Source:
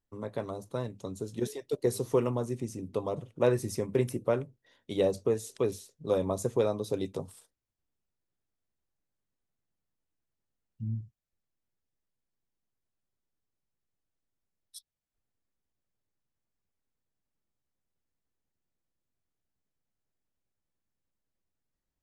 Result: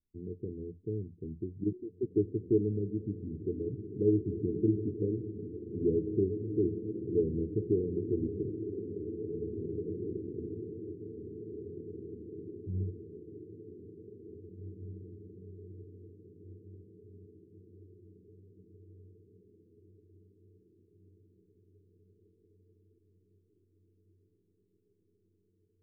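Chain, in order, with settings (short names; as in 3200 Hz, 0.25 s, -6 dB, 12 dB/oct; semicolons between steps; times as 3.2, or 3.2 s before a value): rippled Chebyshev low-pass 520 Hz, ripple 3 dB; on a send: diffused feedback echo 1.924 s, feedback 49%, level -6 dB; on the sum: wide varispeed 0.853×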